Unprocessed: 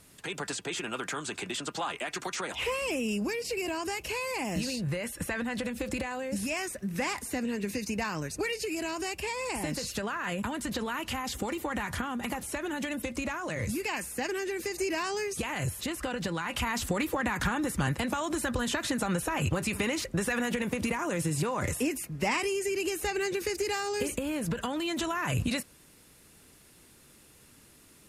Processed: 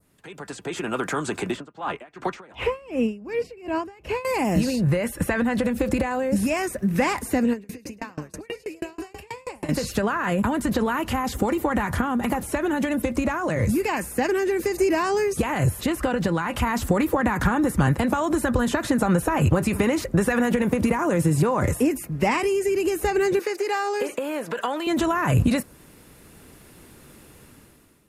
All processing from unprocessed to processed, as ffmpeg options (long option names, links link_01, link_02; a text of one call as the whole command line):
ffmpeg -i in.wav -filter_complex "[0:a]asettb=1/sr,asplit=3[link_01][link_02][link_03];[link_01]atrim=end=1.544[link_04];[link_02]atrim=start=1.54:end=4.25,asetpts=PTS-STARTPTS,afade=type=in:duration=0.004:curve=qsin,afade=type=out:start_time=2.706:duration=0.004:curve=qsin,lowpass=frequency=2100:poles=1,aeval=exprs='val(0)*pow(10,-23*(0.5-0.5*cos(2*PI*2.7*n/s))/20)':channel_layout=same[link_05];[link_03]atrim=start=4.246[link_06];[link_04][link_05]acrossfade=duration=0.004:curve1=hsin:curve2=qsin[link_07];[link_07][link_06]acrossfade=duration=0.004:curve1=qsin:curve2=hsin,asettb=1/sr,asplit=3[link_08][link_09][link_10];[link_08]atrim=end=7.534[link_11];[link_09]atrim=start=7.53:end=9.69,asetpts=PTS-STARTPTS,afade=type=in:duration=0.004:curve=qsin,afade=type=out:start_time=2.156:duration=0.004:curve=qsin,acompressor=threshold=-35dB:ratio=3:attack=3.2:release=140:knee=1:detection=peak,asplit=5[link_12][link_13][link_14][link_15][link_16];[link_13]adelay=105,afreqshift=43,volume=-9.5dB[link_17];[link_14]adelay=210,afreqshift=86,volume=-19.1dB[link_18];[link_15]adelay=315,afreqshift=129,volume=-28.8dB[link_19];[link_16]adelay=420,afreqshift=172,volume=-38.4dB[link_20];[link_12][link_17][link_18][link_19][link_20]amix=inputs=5:normalize=0,atrim=end_sample=95256,aeval=exprs='val(0)*pow(10,-31*if(lt(mod(6.2*n/s,1),2*abs(6.2)/1000),1-mod(6.2*n/s,1)/(2*abs(6.2)/1000),(mod(6.2*n/s,1)-2*abs(6.2)/1000)/(1-2*abs(6.2)/1000))/20)':channel_layout=same[link_21];[link_10]atrim=start=9.686[link_22];[link_11][link_21]acrossfade=duration=0.004:curve1=hsin:curve2=qsin[link_23];[link_23][link_22]acrossfade=duration=0.004:curve1=qsin:curve2=hsin,asettb=1/sr,asplit=3[link_24][link_25][link_26];[link_24]atrim=end=23.394[link_27];[link_25]atrim=start=23.39:end=24.87,asetpts=PTS-STARTPTS,afade=type=in:duration=0.004:curve=qsin,afade=type=out:start_time=1.476:duration=0.004:curve=qsin,acrossover=split=5500[link_28][link_29];[link_29]acompressor=threshold=-49dB:ratio=4:attack=1:release=60[link_30];[link_28][link_30]amix=inputs=2:normalize=0,highpass=520[link_31];[link_26]atrim=start=24.866[link_32];[link_27][link_31]acrossfade=duration=0.004:curve1=hsin:curve2=qsin[link_33];[link_33][link_32]acrossfade=duration=0.004:curve1=qsin:curve2=hsin,adynamicequalizer=threshold=0.00447:dfrequency=2900:dqfactor=1:tfrequency=2900:tqfactor=1:attack=5:release=100:ratio=0.375:range=2.5:mode=cutabove:tftype=bell,dynaudnorm=framelen=200:gausssize=7:maxgain=16dB,equalizer=frequency=6300:width=0.37:gain=-9,volume=-4dB" out.wav